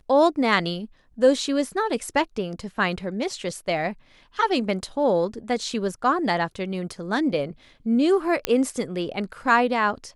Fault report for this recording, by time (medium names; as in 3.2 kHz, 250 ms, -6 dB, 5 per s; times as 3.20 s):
8.45 s: pop -6 dBFS